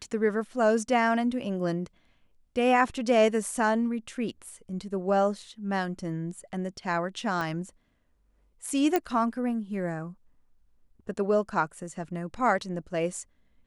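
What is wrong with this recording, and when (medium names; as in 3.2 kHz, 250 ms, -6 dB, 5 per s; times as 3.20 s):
7.41 s: pop -18 dBFS
8.96 s: pop -11 dBFS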